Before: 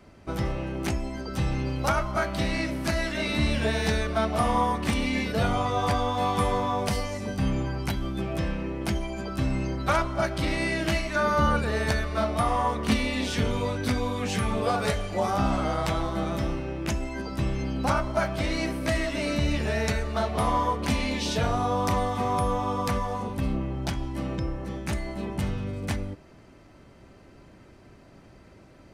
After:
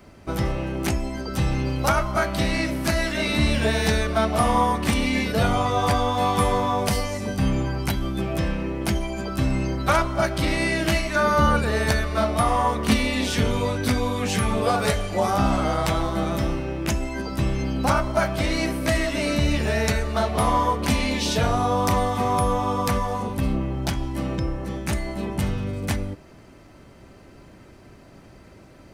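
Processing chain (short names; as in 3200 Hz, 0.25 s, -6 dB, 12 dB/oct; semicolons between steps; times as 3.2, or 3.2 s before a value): high shelf 11000 Hz +9 dB; gain +4 dB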